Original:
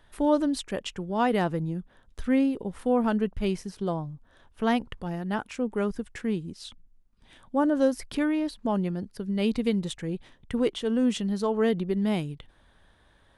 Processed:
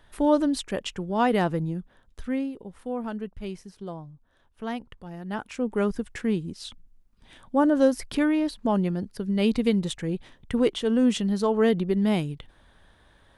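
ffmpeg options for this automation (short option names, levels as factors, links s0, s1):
-af "volume=4.22,afade=t=out:st=1.58:d=0.94:silence=0.334965,afade=t=in:st=5.1:d=0.72:silence=0.298538"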